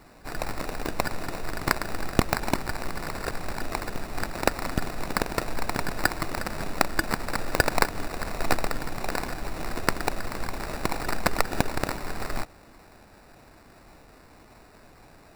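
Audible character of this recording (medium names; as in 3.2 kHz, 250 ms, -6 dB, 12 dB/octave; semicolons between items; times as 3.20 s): aliases and images of a low sample rate 3.2 kHz, jitter 0%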